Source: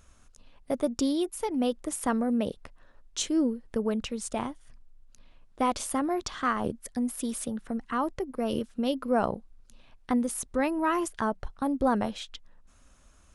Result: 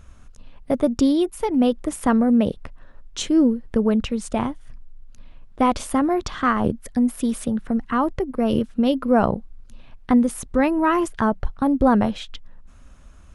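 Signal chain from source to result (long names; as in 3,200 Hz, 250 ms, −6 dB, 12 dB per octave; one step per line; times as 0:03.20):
bass and treble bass +6 dB, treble −7 dB
level +7 dB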